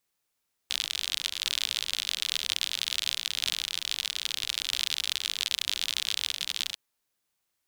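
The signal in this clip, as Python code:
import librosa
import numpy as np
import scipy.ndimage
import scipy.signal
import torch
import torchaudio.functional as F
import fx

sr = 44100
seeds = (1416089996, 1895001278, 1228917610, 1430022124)

y = fx.rain(sr, seeds[0], length_s=6.05, drops_per_s=59.0, hz=3500.0, bed_db=-26)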